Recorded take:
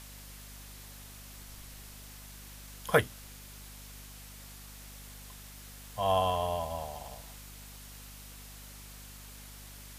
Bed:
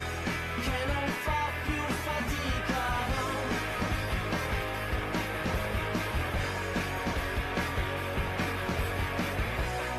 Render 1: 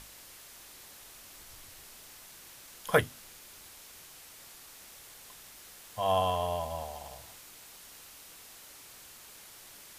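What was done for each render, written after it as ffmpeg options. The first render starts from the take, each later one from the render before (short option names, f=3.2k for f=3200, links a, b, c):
-af "bandreject=f=50:t=h:w=6,bandreject=f=100:t=h:w=6,bandreject=f=150:t=h:w=6,bandreject=f=200:t=h:w=6,bandreject=f=250:t=h:w=6"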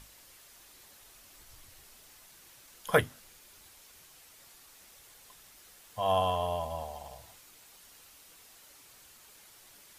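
-af "afftdn=nr=6:nf=-52"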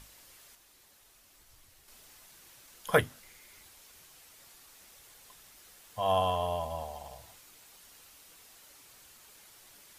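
-filter_complex "[0:a]asettb=1/sr,asplit=3[a][b][c];[a]atrim=end=3.234[d];[b]atrim=start=3.23:end=3.63,asetpts=PTS-STARTPTS,afade=t=in:d=0.004:c=qsin,afade=t=out:st=0.396:d=0.004:c=qsin,equalizer=f=2.1k:t=o:w=0.22:g=12[e];[c]atrim=start=3.626[f];[d][e]acrossfade=d=0.004:c1=hsin:c2=qsin[g];[g][f]acrossfade=d=0.004:c1=qsin:c2=hsin,asplit=3[h][i][j];[h]atrim=end=0.552[k];[i]atrim=start=0.548:end=1.882,asetpts=PTS-STARTPTS,volume=-5.5dB[l];[j]atrim=start=1.878[m];[k][l]acrossfade=d=0.004:c1=hsin:c2=hsin[n];[n][m]acrossfade=d=0.004:c1=hsin:c2=hsin"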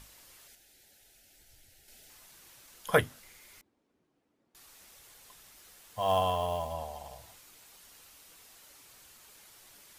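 -filter_complex "[0:a]asettb=1/sr,asplit=3[a][b][c];[a]atrim=end=0.474[d];[b]atrim=start=0.47:end=2.1,asetpts=PTS-STARTPTS,afade=t=in:d=0.004:c=qsin,afade=t=out:st=1.626:d=0.004:c=qsin,asuperstop=centerf=1100:order=4:qfactor=1.9[e];[c]atrim=start=2.096[f];[d][e]acrossfade=d=0.004:c1=hsin:c2=qsin[g];[g][f]acrossfade=d=0.004:c1=qsin:c2=hsin,asettb=1/sr,asplit=3[h][i][j];[h]atrim=end=3.614[k];[i]atrim=start=3.61:end=4.55,asetpts=PTS-STARTPTS,afade=t=in:d=0.004:c=qsin,afade=t=out:st=0.936:d=0.004:c=qsin,bandpass=f=270:t=q:w=2.2[l];[j]atrim=start=4.546[m];[k][l]acrossfade=d=0.004:c1=hsin:c2=qsin[n];[n][m]acrossfade=d=0.004:c1=qsin:c2=hsin,asettb=1/sr,asplit=3[o][p][q];[o]atrim=end=5.564[r];[p]atrim=start=5.56:end=6.73,asetpts=PTS-STARTPTS,afade=t=in:d=0.004:c=qsin,afade=t=out:st=1.166:d=0.004:c=qsin,acrusher=bits=6:mode=log:mix=0:aa=0.000001[s];[q]atrim=start=6.726[t];[r][s]acrossfade=d=0.004:c1=hsin:c2=qsin[u];[u][t]acrossfade=d=0.004:c1=qsin:c2=hsin"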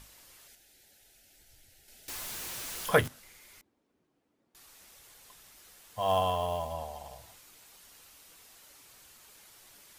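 -filter_complex "[0:a]asettb=1/sr,asplit=3[a][b][c];[a]atrim=end=2.084[d];[b]atrim=start=2.08:end=3.08,asetpts=PTS-STARTPTS,afade=t=in:d=0.004:c=qsin,afade=t=out:st=0.996:d=0.004:c=qsin,aeval=exprs='val(0)+0.5*0.0178*sgn(val(0))':c=same[e];[c]atrim=start=3.076[f];[d][e]acrossfade=d=0.004:c1=hsin:c2=qsin[g];[g][f]acrossfade=d=0.004:c1=qsin:c2=hsin"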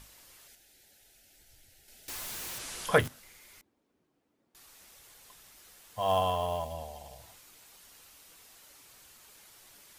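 -filter_complex "[0:a]asplit=3[a][b][c];[a]afade=t=out:st=2.58:d=0.02[d];[b]lowpass=f=11k:w=0.5412,lowpass=f=11k:w=1.3066,afade=t=in:st=2.58:d=0.02,afade=t=out:st=2.98:d=0.02[e];[c]afade=t=in:st=2.98:d=0.02[f];[d][e][f]amix=inputs=3:normalize=0,asettb=1/sr,asplit=3[g][h][i];[g]atrim=end=6.644[j];[h]atrim=start=6.64:end=7.2,asetpts=PTS-STARTPTS,afade=t=in:d=0.004:c=qsin,afade=t=out:st=0.556:d=0.004:c=qsin,equalizer=f=1.1k:w=1.3:g=-7[k];[i]atrim=start=7.196[l];[j][k]acrossfade=d=0.004:c1=hsin:c2=qsin[m];[m][l]acrossfade=d=0.004:c1=qsin:c2=hsin"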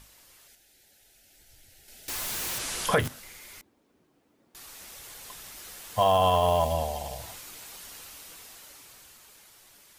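-af "dynaudnorm=f=220:g=17:m=14dB,alimiter=limit=-12dB:level=0:latency=1:release=136"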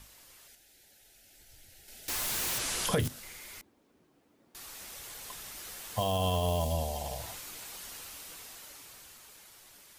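-filter_complex "[0:a]acrossover=split=440|3000[a][b][c];[b]acompressor=threshold=-36dB:ratio=6[d];[a][d][c]amix=inputs=3:normalize=0"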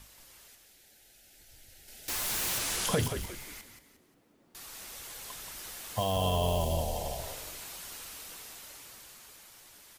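-filter_complex "[0:a]asplit=5[a][b][c][d][e];[b]adelay=177,afreqshift=-54,volume=-7.5dB[f];[c]adelay=354,afreqshift=-108,volume=-16.4dB[g];[d]adelay=531,afreqshift=-162,volume=-25.2dB[h];[e]adelay=708,afreqshift=-216,volume=-34.1dB[i];[a][f][g][h][i]amix=inputs=5:normalize=0"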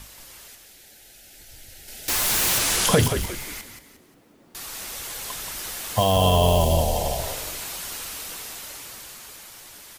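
-af "volume=10.5dB"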